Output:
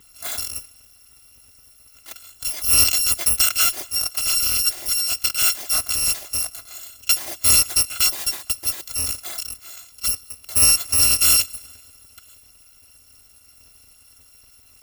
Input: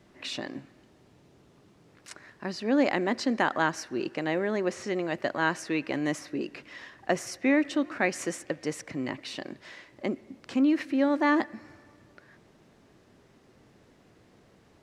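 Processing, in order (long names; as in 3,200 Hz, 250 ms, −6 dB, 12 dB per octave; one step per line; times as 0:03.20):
samples in bit-reversed order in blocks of 256 samples
level +8 dB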